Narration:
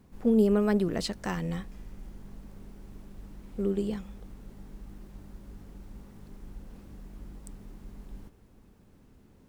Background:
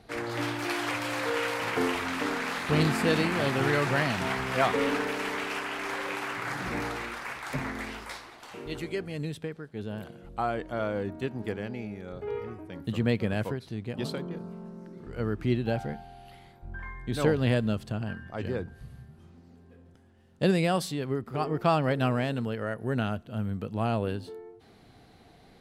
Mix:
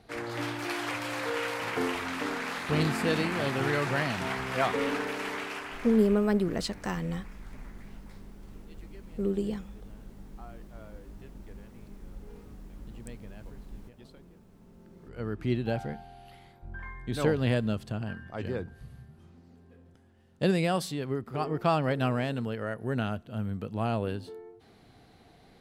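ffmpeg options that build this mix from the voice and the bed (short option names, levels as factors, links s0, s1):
-filter_complex "[0:a]adelay=5600,volume=0.944[s0];[1:a]volume=6.68,afade=t=out:st=5.34:d=0.9:silence=0.125893,afade=t=in:st=14.56:d=1.02:silence=0.112202[s1];[s0][s1]amix=inputs=2:normalize=0"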